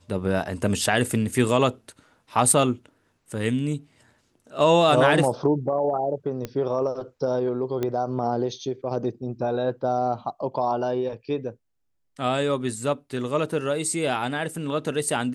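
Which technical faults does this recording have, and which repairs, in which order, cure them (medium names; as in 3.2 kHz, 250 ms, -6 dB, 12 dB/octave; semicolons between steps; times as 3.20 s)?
6.45 s: pop -16 dBFS
7.83 s: pop -14 dBFS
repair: de-click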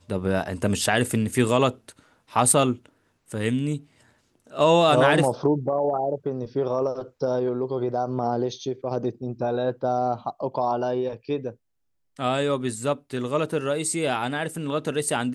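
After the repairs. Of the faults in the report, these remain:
6.45 s: pop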